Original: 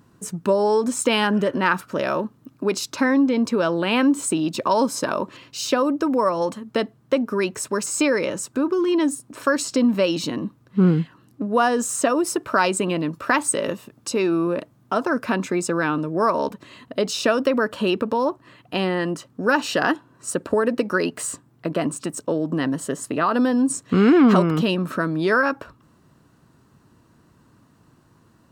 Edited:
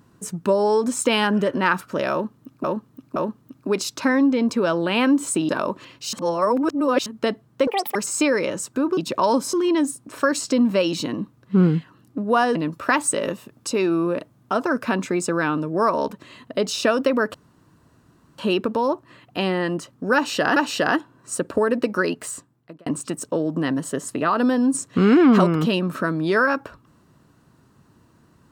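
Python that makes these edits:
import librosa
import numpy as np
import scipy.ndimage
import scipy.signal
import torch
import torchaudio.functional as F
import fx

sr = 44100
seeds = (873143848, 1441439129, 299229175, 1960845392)

y = fx.edit(x, sr, fx.repeat(start_s=2.12, length_s=0.52, count=3),
    fx.move(start_s=4.45, length_s=0.56, to_s=8.77),
    fx.reverse_span(start_s=5.65, length_s=0.93),
    fx.speed_span(start_s=7.19, length_s=0.56, speed=1.98),
    fx.cut(start_s=11.79, length_s=1.17),
    fx.insert_room_tone(at_s=17.75, length_s=1.04),
    fx.repeat(start_s=19.52, length_s=0.41, count=2),
    fx.fade_out_span(start_s=20.97, length_s=0.85), tone=tone)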